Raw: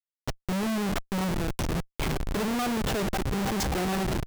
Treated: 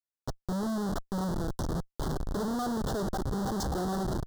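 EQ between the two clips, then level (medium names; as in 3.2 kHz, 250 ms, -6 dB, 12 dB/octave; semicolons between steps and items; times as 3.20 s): Butterworth band-stop 2.4 kHz, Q 1; treble shelf 7.1 kHz -6.5 dB; -3.0 dB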